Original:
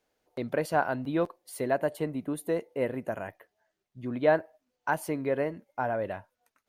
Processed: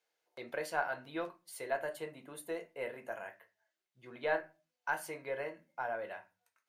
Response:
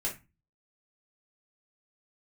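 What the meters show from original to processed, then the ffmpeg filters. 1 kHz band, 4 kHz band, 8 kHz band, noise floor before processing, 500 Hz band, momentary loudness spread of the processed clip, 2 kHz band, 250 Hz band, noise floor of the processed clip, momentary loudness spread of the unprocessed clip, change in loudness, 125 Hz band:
-7.5 dB, -3.5 dB, -5.0 dB, -84 dBFS, -10.0 dB, 14 LU, -3.5 dB, -16.5 dB, under -85 dBFS, 11 LU, -9.0 dB, -19.0 dB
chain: -filter_complex "[0:a]highpass=f=1300:p=1,aeval=exprs='0.158*(cos(1*acos(clip(val(0)/0.158,-1,1)))-cos(1*PI/2))+0.00126*(cos(4*acos(clip(val(0)/0.158,-1,1)))-cos(4*PI/2))':c=same,asplit=2[s0][s1];[1:a]atrim=start_sample=2205,afade=t=out:st=0.4:d=0.01,atrim=end_sample=18081,lowpass=8600[s2];[s1][s2]afir=irnorm=-1:irlink=0,volume=0.596[s3];[s0][s3]amix=inputs=2:normalize=0,volume=0.501"

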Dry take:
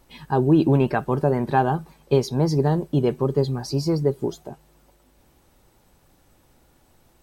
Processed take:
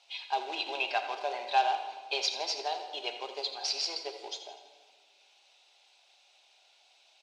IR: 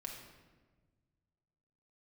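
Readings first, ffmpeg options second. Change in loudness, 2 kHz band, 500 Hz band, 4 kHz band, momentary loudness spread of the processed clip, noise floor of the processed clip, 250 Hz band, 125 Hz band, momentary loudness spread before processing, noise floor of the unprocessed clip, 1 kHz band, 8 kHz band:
-10.5 dB, -1.5 dB, -16.5 dB, +6.5 dB, 11 LU, -65 dBFS, -32.0 dB, under -40 dB, 7 LU, -60 dBFS, -4.5 dB, 0.0 dB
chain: -filter_complex "[0:a]aderivative,acrusher=bits=2:mode=log:mix=0:aa=0.000001,highpass=f=470:w=0.5412,highpass=f=470:w=1.3066,equalizer=f=490:t=q:w=4:g=-4,equalizer=f=720:t=q:w=4:g=9,equalizer=f=1200:t=q:w=4:g=-8,equalizer=f=1800:t=q:w=4:g=-8,equalizer=f=2600:t=q:w=4:g=8,equalizer=f=3700:t=q:w=4:g=5,lowpass=f=5100:w=0.5412,lowpass=f=5100:w=1.3066,aecho=1:1:83|166|249|332|415|498:0.224|0.121|0.0653|0.0353|0.019|0.0103,asplit=2[s0][s1];[1:a]atrim=start_sample=2205,asetrate=38367,aresample=44100[s2];[s1][s2]afir=irnorm=-1:irlink=0,volume=1.26[s3];[s0][s3]amix=inputs=2:normalize=0,volume=1.58"

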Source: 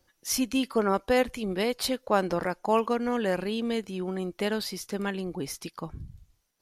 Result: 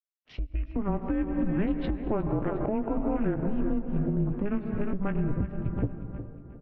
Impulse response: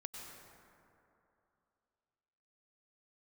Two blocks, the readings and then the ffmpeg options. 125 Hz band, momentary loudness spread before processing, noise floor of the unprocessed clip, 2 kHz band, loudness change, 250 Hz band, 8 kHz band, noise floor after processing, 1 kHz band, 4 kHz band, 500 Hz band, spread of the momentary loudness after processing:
+8.5 dB, 11 LU, -71 dBFS, -10.0 dB, -1.5 dB, +2.0 dB, under -40 dB, -56 dBFS, -8.0 dB, under -20 dB, -5.5 dB, 8 LU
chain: -filter_complex "[0:a]aeval=exprs='sgn(val(0))*max(abs(val(0))-0.015,0)':c=same,afwtdn=0.0141,highpass=110,bandreject=f=60:t=h:w=6,bandreject=f=120:t=h:w=6,bandreject=f=180:t=h:w=6,bandreject=f=240:t=h:w=6,bandreject=f=300:t=h:w=6,bandreject=f=360:t=h:w=6,bandreject=f=420:t=h:w=6,bandreject=f=480:t=h:w=6,aecho=1:1:359|718|1077|1436:0.211|0.0782|0.0289|0.0107,asplit=2[s0][s1];[1:a]atrim=start_sample=2205[s2];[s1][s2]afir=irnorm=-1:irlink=0,volume=0.668[s3];[s0][s3]amix=inputs=2:normalize=0,highpass=f=180:t=q:w=0.5412,highpass=f=180:t=q:w=1.307,lowpass=f=3100:t=q:w=0.5176,lowpass=f=3100:t=q:w=0.7071,lowpass=f=3100:t=q:w=1.932,afreqshift=-210,tiltshelf=f=660:g=6.5,asplit=2[s4][s5];[s5]adelay=17,volume=0.282[s6];[s4][s6]amix=inputs=2:normalize=0,acompressor=threshold=0.0355:ratio=10,alimiter=level_in=1.68:limit=0.0631:level=0:latency=1:release=312,volume=0.596,dynaudnorm=f=110:g=11:m=2.11,volume=1.5"

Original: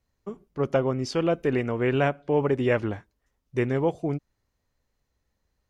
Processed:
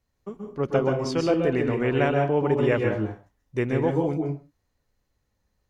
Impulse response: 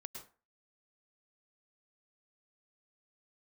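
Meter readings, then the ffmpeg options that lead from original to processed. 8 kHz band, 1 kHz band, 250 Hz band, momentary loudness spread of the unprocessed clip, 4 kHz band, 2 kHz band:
no reading, +2.0 dB, +2.0 dB, 12 LU, +1.0 dB, +1.5 dB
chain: -filter_complex "[1:a]atrim=start_sample=2205,afade=t=out:st=0.32:d=0.01,atrim=end_sample=14553,asetrate=36162,aresample=44100[s0];[0:a][s0]afir=irnorm=-1:irlink=0,volume=1.68"

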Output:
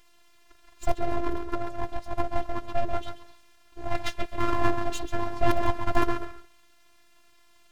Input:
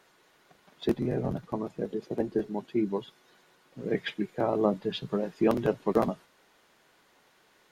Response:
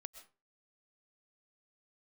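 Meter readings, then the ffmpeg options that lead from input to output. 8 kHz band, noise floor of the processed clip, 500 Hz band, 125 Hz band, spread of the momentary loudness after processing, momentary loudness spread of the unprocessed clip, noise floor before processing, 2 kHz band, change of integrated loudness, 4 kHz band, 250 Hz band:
no reading, -58 dBFS, -2.5 dB, +0.5 dB, 9 LU, 8 LU, -64 dBFS, +6.5 dB, -0.5 dB, +1.0 dB, -4.0 dB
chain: -filter_complex "[0:a]asplit=2[s0][s1];[1:a]atrim=start_sample=2205,lowpass=2500,adelay=135[s2];[s1][s2]afir=irnorm=-1:irlink=0,volume=0.891[s3];[s0][s3]amix=inputs=2:normalize=0,aeval=exprs='abs(val(0))':c=same,afftfilt=real='hypot(re,im)*cos(PI*b)':imag='0':win_size=512:overlap=0.75,volume=2.24"

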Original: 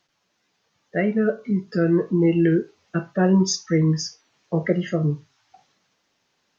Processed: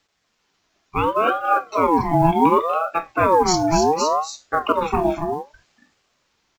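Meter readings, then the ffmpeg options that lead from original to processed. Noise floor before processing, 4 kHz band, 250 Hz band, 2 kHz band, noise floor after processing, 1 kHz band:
-72 dBFS, +3.0 dB, -3.0 dB, +4.0 dB, -70 dBFS, +19.5 dB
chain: -af "acrusher=bits=9:mode=log:mix=0:aa=0.000001,aecho=1:1:242|279.9:0.282|0.501,aeval=exprs='val(0)*sin(2*PI*750*n/s+750*0.35/0.68*sin(2*PI*0.68*n/s))':c=same,volume=1.58"

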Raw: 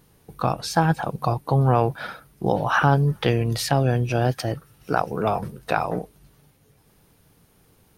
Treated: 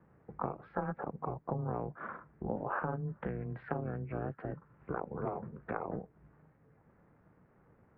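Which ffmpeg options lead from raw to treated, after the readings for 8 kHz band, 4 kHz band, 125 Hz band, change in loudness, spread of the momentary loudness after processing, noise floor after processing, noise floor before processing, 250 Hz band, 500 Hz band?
under -40 dB, under -40 dB, -18.5 dB, -16.5 dB, 8 LU, -67 dBFS, -59 dBFS, -14.5 dB, -15.0 dB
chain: -af "acompressor=threshold=0.0224:ratio=3,aeval=exprs='val(0)*sin(2*PI*150*n/s)':c=same,highpass=f=210:t=q:w=0.5412,highpass=f=210:t=q:w=1.307,lowpass=f=2000:t=q:w=0.5176,lowpass=f=2000:t=q:w=0.7071,lowpass=f=2000:t=q:w=1.932,afreqshift=-140"

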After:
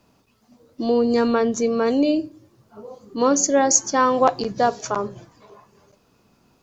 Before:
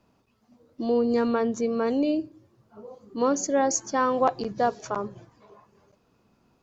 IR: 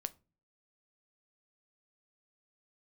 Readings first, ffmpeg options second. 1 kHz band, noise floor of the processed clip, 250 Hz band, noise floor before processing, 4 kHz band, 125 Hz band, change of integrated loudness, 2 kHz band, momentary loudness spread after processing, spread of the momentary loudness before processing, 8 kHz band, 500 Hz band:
+5.5 dB, -62 dBFS, +5.0 dB, -67 dBFS, +9.5 dB, +5.0 dB, +5.5 dB, +6.0 dB, 10 LU, 9 LU, no reading, +5.0 dB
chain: -filter_complex "[0:a]asplit=2[s0][s1];[1:a]atrim=start_sample=2205,highshelf=f=2900:g=11[s2];[s1][s2]afir=irnorm=-1:irlink=0,volume=1.33[s3];[s0][s3]amix=inputs=2:normalize=0,volume=0.841"

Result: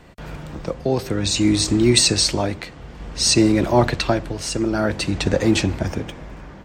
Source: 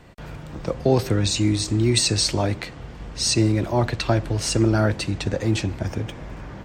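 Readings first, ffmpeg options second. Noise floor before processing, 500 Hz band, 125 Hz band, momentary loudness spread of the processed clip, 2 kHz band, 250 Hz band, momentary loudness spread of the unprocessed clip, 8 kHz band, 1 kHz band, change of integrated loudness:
-39 dBFS, +3.0 dB, -2.0 dB, 19 LU, +4.0 dB, +4.0 dB, 17 LU, +4.0 dB, +3.5 dB, +3.0 dB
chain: -af "dynaudnorm=f=120:g=5:m=1.88,equalizer=f=110:w=7.1:g=-11,tremolo=f=0.55:d=0.6,volume=1.26"

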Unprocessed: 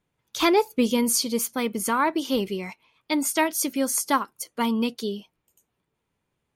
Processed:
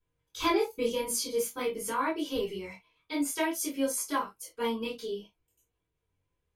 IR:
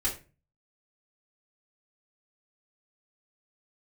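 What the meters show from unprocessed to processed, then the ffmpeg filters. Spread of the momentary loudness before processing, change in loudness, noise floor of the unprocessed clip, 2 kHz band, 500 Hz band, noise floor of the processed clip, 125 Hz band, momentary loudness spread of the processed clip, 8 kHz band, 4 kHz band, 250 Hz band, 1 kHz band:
12 LU, -7.5 dB, -79 dBFS, -7.0 dB, -4.5 dB, -82 dBFS, no reading, 10 LU, -7.5 dB, -7.5 dB, -9.0 dB, -7.5 dB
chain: -filter_complex "[0:a]flanger=delay=18.5:depth=7.9:speed=0.52[s0];[1:a]atrim=start_sample=2205,atrim=end_sample=4410,asetrate=57330,aresample=44100[s1];[s0][s1]afir=irnorm=-1:irlink=0,volume=0.398"

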